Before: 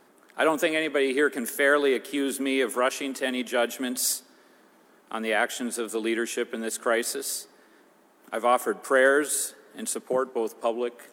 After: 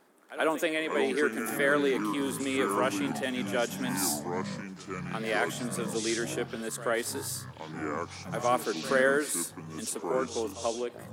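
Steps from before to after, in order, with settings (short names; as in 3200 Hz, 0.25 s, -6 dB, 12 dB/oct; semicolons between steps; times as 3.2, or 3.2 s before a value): pre-echo 83 ms -15 dB; echoes that change speed 0.335 s, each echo -6 st, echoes 3, each echo -6 dB; gain -5 dB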